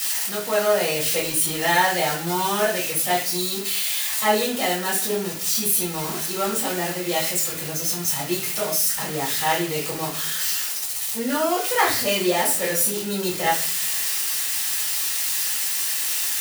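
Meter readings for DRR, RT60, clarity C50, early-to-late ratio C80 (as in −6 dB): −7.0 dB, 0.50 s, 6.5 dB, 11.0 dB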